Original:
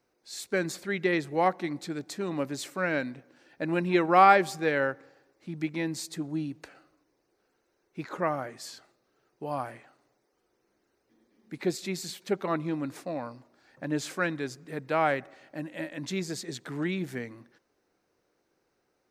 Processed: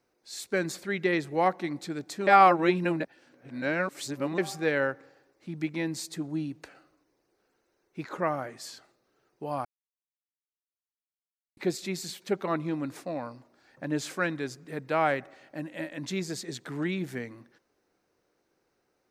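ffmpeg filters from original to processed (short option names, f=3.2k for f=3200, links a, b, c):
-filter_complex "[0:a]asplit=5[a][b][c][d][e];[a]atrim=end=2.272[f];[b]atrim=start=2.268:end=4.382,asetpts=PTS-STARTPTS,areverse[g];[c]atrim=start=4.378:end=9.65,asetpts=PTS-STARTPTS,afade=t=out:st=5.268:d=0.004:c=hsin[h];[d]atrim=start=9.65:end=11.57,asetpts=PTS-STARTPTS,volume=0[i];[e]atrim=start=11.57,asetpts=PTS-STARTPTS,afade=t=in:d=0.004:c=hsin[j];[f][g]acrossfade=d=0.004:c1=hsin:c2=hsin[k];[h][i][j]concat=n=3:v=0:a=1[l];[k][l]acrossfade=d=0.004:c1=hsin:c2=hsin"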